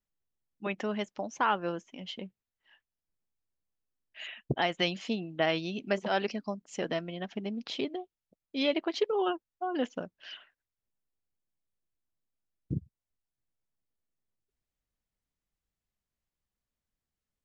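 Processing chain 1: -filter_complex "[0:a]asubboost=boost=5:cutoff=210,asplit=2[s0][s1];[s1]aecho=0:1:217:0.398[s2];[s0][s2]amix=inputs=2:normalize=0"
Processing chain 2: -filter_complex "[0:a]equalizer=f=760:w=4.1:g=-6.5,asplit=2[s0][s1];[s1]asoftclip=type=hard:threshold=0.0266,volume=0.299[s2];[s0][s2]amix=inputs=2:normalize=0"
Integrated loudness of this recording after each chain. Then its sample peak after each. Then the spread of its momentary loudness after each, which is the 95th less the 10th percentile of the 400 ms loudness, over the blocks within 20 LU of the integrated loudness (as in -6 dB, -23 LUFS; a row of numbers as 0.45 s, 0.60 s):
-30.5 LUFS, -32.5 LUFS; -10.5 dBFS, -14.0 dBFS; 14 LU, 12 LU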